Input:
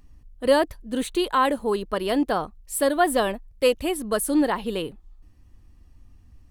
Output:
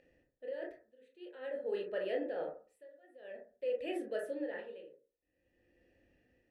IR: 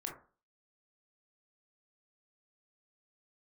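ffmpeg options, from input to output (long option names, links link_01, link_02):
-filter_complex "[0:a]areverse,acompressor=threshold=-31dB:ratio=10,areverse,asplit=3[link_01][link_02][link_03];[link_01]bandpass=frequency=530:width_type=q:width=8,volume=0dB[link_04];[link_02]bandpass=frequency=1840:width_type=q:width=8,volume=-6dB[link_05];[link_03]bandpass=frequency=2480:width_type=q:width=8,volume=-9dB[link_06];[link_04][link_05][link_06]amix=inputs=3:normalize=0,alimiter=level_in=13dB:limit=-24dB:level=0:latency=1:release=91,volume=-13dB,tremolo=f=0.5:d=0.96[link_07];[1:a]atrim=start_sample=2205[link_08];[link_07][link_08]afir=irnorm=-1:irlink=0,volume=12.5dB"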